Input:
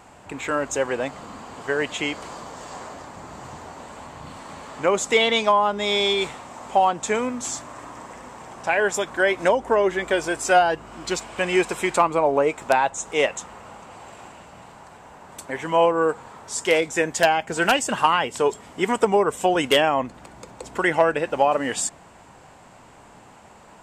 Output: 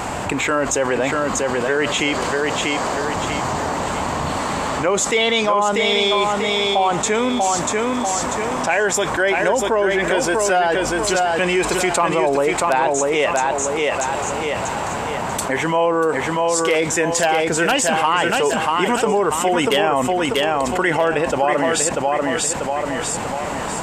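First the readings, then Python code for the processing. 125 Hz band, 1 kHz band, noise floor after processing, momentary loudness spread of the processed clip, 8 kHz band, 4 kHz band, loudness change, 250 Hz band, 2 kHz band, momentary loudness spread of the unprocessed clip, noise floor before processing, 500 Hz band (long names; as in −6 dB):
+9.0 dB, +4.5 dB, −24 dBFS, 6 LU, +9.0 dB, +5.0 dB, +3.0 dB, +6.5 dB, +5.0 dB, 20 LU, −48 dBFS, +4.0 dB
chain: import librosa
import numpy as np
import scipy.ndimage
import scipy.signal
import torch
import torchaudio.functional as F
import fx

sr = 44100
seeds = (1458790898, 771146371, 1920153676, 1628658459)

p1 = x + fx.echo_feedback(x, sr, ms=640, feedback_pct=29, wet_db=-5.5, dry=0)
p2 = fx.env_flatten(p1, sr, amount_pct=70)
y = p2 * 10.0 ** (-2.5 / 20.0)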